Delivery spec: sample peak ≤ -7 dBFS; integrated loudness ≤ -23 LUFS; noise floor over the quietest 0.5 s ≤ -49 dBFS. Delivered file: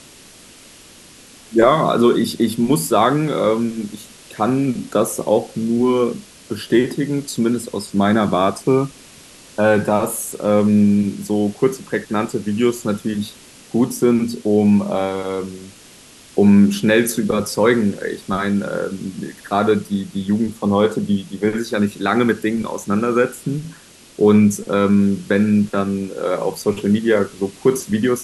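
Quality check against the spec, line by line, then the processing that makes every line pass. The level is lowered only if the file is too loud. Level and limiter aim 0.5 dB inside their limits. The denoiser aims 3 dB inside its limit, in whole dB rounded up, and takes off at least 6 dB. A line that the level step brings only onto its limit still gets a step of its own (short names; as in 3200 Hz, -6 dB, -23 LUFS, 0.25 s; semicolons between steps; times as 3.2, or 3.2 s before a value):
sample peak -1.5 dBFS: fail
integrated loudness -18.0 LUFS: fail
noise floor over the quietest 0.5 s -44 dBFS: fail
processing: gain -5.5 dB; limiter -7.5 dBFS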